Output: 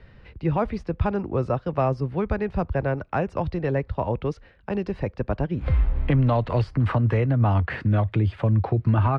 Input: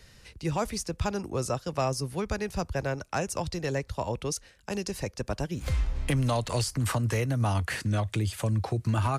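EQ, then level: Chebyshev low-pass 7.4 kHz, order 2; distance through air 420 m; treble shelf 3.8 kHz -9 dB; +8.0 dB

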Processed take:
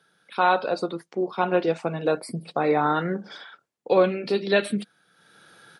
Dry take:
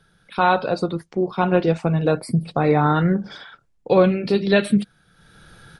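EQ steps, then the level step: high-pass 290 Hz 12 dB/octave; -2.5 dB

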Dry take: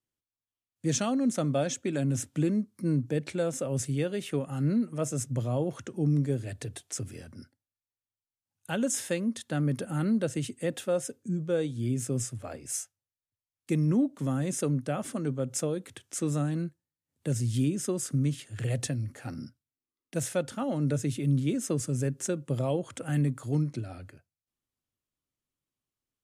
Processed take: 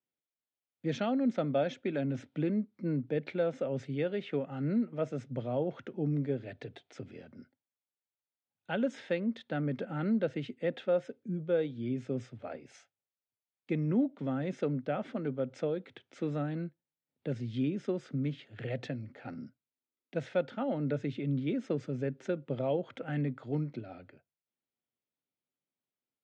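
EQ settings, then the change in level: dynamic bell 1.7 kHz, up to +4 dB, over -50 dBFS, Q 1.7; cabinet simulation 210–3300 Hz, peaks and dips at 320 Hz -4 dB, 1.1 kHz -9 dB, 1.7 kHz -6 dB, 2.8 kHz -5 dB; 0.0 dB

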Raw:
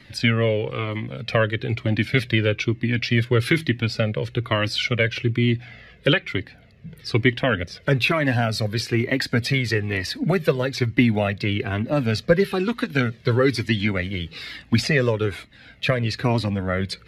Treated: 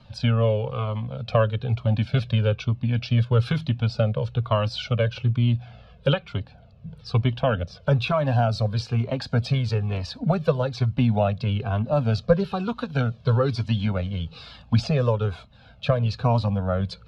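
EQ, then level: distance through air 96 m; treble shelf 3.9 kHz -8 dB; static phaser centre 810 Hz, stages 4; +3.5 dB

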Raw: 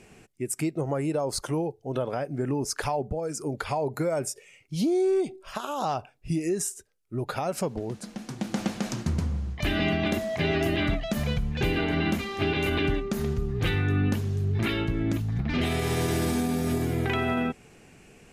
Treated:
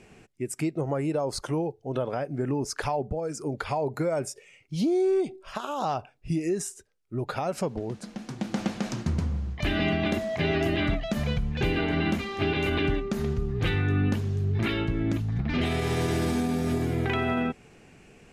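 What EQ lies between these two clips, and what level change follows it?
treble shelf 9.6 kHz -12 dB; 0.0 dB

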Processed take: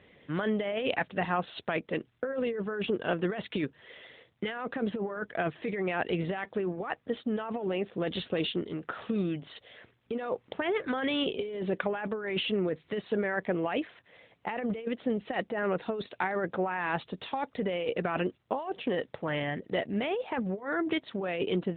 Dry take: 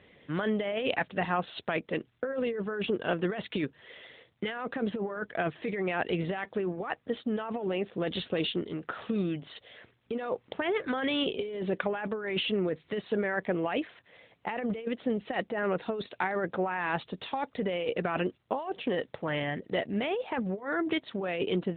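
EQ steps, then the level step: distance through air 52 m; 0.0 dB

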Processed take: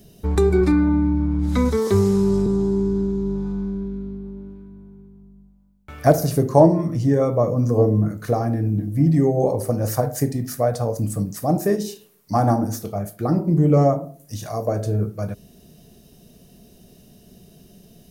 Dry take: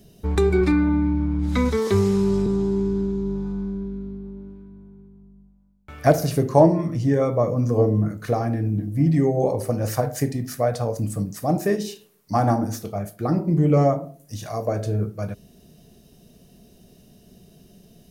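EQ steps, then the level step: dynamic bell 2.6 kHz, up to -7 dB, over -46 dBFS, Q 0.96; treble shelf 10 kHz +4 dB; +2.0 dB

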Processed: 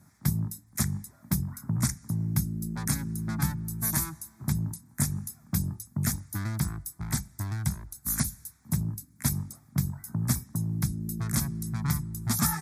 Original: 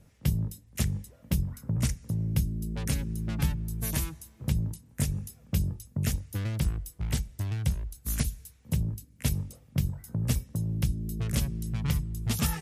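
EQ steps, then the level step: Bessel high-pass 180 Hz, order 2; static phaser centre 1.2 kHz, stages 4; +7.0 dB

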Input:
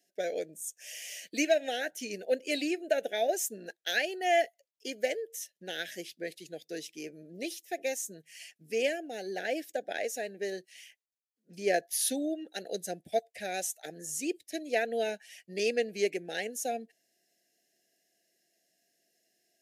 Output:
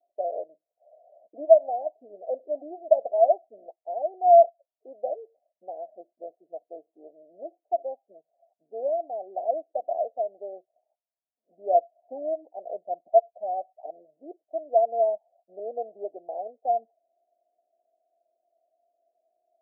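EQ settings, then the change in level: resonant high-pass 640 Hz, resonance Q 4.9; rippled Chebyshev low-pass 1 kHz, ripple 6 dB; 0.0 dB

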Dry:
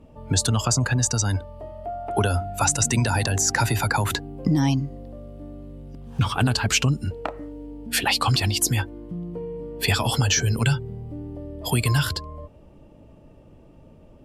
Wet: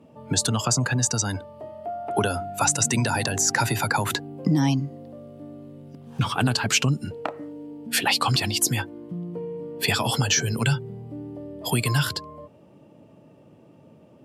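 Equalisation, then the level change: high-pass 120 Hz 24 dB/octave; 0.0 dB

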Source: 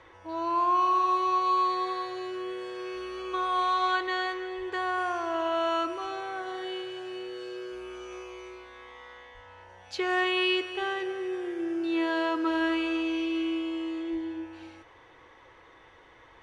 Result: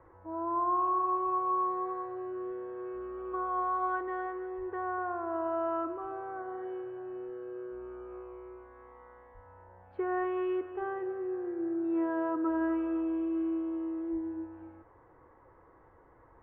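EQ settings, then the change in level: low-pass 1.4 kHz 24 dB/octave; bass shelf 340 Hz +6 dB; -5.0 dB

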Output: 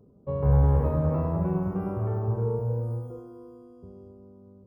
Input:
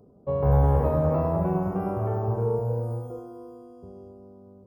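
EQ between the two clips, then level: tone controls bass +4 dB, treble -4 dB; peaking EQ 710 Hz -7 dB 0.37 oct; -3.5 dB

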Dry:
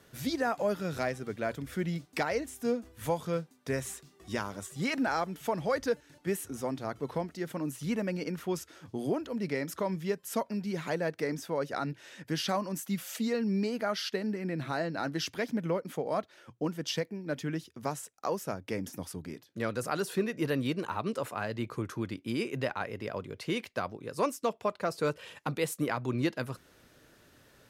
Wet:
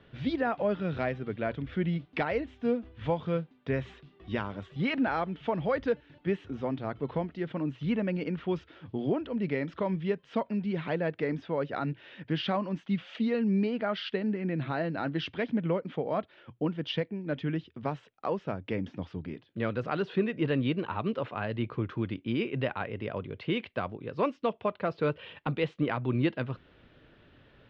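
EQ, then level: resonant low-pass 3.2 kHz, resonance Q 2.6; distance through air 170 m; tilt EQ -1.5 dB/octave; 0.0 dB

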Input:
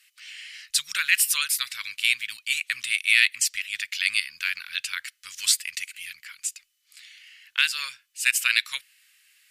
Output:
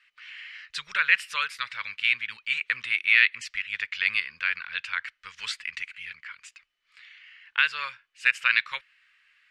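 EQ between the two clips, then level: low-pass 2.1 kHz 12 dB/octave; bass shelf 160 Hz +5 dB; peaking EQ 600 Hz +9.5 dB 2 oct; +2.5 dB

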